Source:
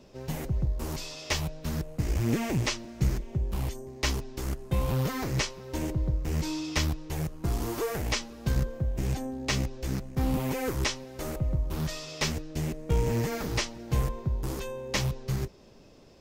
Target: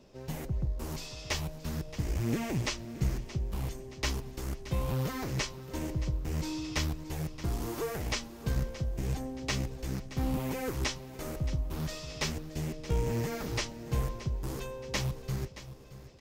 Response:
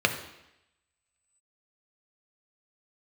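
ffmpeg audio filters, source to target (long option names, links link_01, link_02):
-af "aecho=1:1:624|1248|1872|2496:0.178|0.0854|0.041|0.0197,volume=-4dB"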